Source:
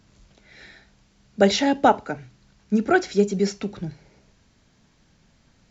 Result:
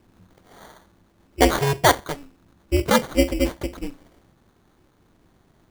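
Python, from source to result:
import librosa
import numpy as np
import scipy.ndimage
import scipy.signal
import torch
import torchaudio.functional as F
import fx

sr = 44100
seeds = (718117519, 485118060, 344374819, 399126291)

y = fx.sample_hold(x, sr, seeds[0], rate_hz=2600.0, jitter_pct=0)
y = y * np.sin(2.0 * np.pi * 140.0 * np.arange(len(y)) / sr)
y = y * 10.0 ** (3.5 / 20.0)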